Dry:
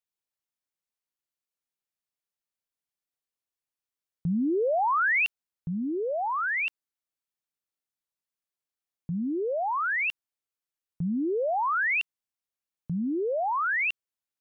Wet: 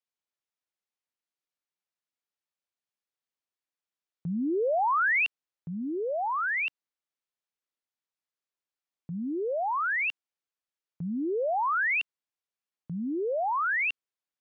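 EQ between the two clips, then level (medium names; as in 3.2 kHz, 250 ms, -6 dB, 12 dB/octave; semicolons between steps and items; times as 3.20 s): high-pass 250 Hz 6 dB/octave; distance through air 69 m; 0.0 dB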